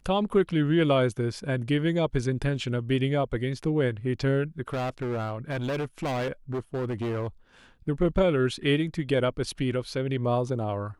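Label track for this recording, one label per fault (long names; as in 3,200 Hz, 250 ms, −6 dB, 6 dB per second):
4.680000	7.270000	clipping −26 dBFS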